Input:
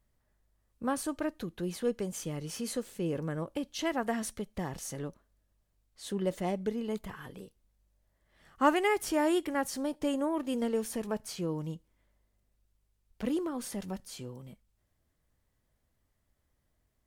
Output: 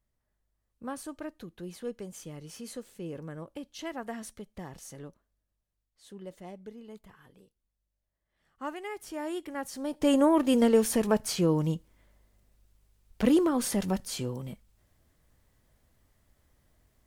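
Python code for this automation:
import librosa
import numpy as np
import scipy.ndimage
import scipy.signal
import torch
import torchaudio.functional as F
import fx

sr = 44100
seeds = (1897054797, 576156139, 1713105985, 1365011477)

y = fx.gain(x, sr, db=fx.line((5.07, -6.0), (6.05, -12.0), (8.77, -12.0), (9.79, -3.0), (10.14, 9.0)))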